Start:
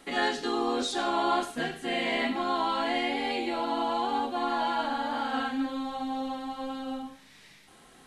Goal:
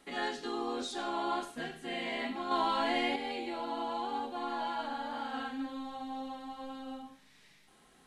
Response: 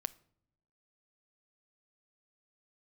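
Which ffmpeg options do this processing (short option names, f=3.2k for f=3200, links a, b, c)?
-filter_complex "[0:a]asettb=1/sr,asplit=3[a][b][c];[a]atrim=end=2.514[d];[b]atrim=start=2.51:end=3.16,asetpts=PTS-STARTPTS,afade=t=in:d=0.004:c=qsin,afade=t=out:st=0.646:d=0.004:c=qsin,acontrast=47[e];[c]atrim=start=3.156[f];[d][e]acrossfade=d=0.004:c1=hsin:c2=qsin[g];[g][f]acrossfade=d=0.004:c1=qsin:c2=hsin[h];[1:a]atrim=start_sample=2205,asetrate=61740,aresample=44100[i];[h][i]afir=irnorm=-1:irlink=0,volume=-4dB"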